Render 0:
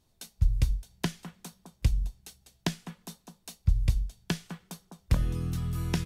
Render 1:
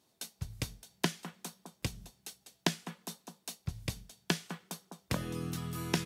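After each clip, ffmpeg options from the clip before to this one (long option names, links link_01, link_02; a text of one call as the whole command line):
ffmpeg -i in.wav -af "highpass=220,volume=2dB" out.wav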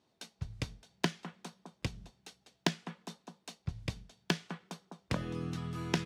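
ffmpeg -i in.wav -af "adynamicsmooth=sensitivity=3:basefreq=4800" out.wav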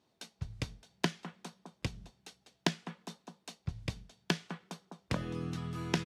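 ffmpeg -i in.wav -af "aresample=32000,aresample=44100" out.wav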